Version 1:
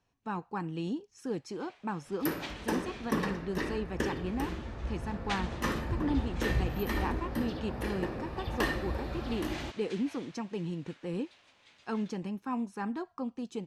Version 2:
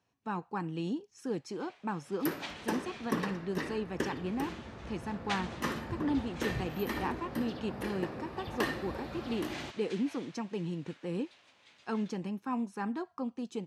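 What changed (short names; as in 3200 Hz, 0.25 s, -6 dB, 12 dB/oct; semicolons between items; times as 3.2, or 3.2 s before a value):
second sound: send -8.0 dB; master: add HPF 100 Hz 12 dB/oct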